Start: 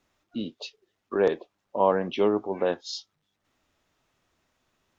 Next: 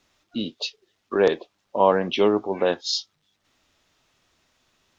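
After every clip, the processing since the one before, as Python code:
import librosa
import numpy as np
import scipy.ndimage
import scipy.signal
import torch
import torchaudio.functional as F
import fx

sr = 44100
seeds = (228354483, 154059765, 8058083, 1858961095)

y = fx.peak_eq(x, sr, hz=4400.0, db=7.0, octaves=1.9)
y = y * librosa.db_to_amplitude(3.5)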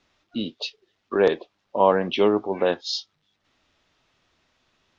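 y = scipy.signal.sosfilt(scipy.signal.butter(2, 4900.0, 'lowpass', fs=sr, output='sos'), x)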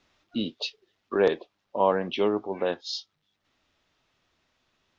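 y = fx.rider(x, sr, range_db=4, speed_s=2.0)
y = y * librosa.db_to_amplitude(-4.5)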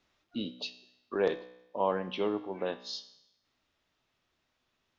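y = fx.comb_fb(x, sr, f0_hz=62.0, decay_s=0.87, harmonics='all', damping=0.0, mix_pct=60)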